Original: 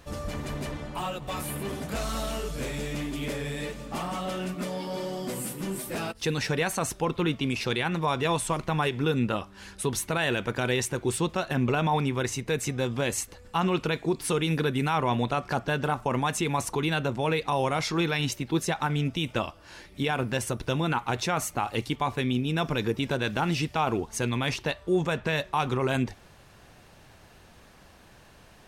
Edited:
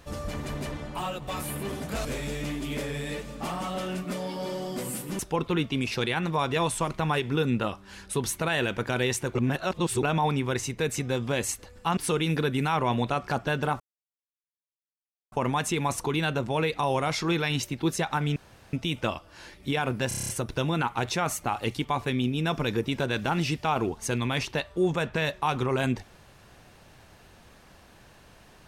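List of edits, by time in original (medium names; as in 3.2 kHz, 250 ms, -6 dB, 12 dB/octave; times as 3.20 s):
2.05–2.56 s: delete
5.70–6.88 s: delete
11.04–11.72 s: reverse
13.66–14.18 s: delete
16.01 s: insert silence 1.52 s
19.05 s: insert room tone 0.37 s
20.40 s: stutter 0.03 s, 8 plays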